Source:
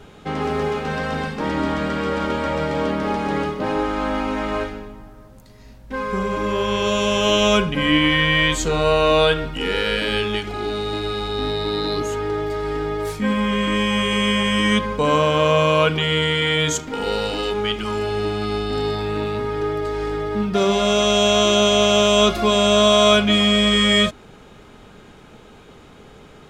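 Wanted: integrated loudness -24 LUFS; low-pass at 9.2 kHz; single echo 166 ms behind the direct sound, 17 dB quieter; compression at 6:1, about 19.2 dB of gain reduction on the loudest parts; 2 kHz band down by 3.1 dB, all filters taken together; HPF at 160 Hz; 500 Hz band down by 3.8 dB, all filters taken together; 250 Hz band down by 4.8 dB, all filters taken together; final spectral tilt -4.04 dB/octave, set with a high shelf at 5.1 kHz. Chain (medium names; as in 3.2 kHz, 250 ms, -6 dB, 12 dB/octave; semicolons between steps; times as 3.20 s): high-pass 160 Hz; low-pass 9.2 kHz; peaking EQ 250 Hz -4 dB; peaking EQ 500 Hz -3.5 dB; peaking EQ 2 kHz -3 dB; treble shelf 5.1 kHz -4 dB; compression 6:1, threshold -35 dBFS; delay 166 ms -17 dB; trim +12.5 dB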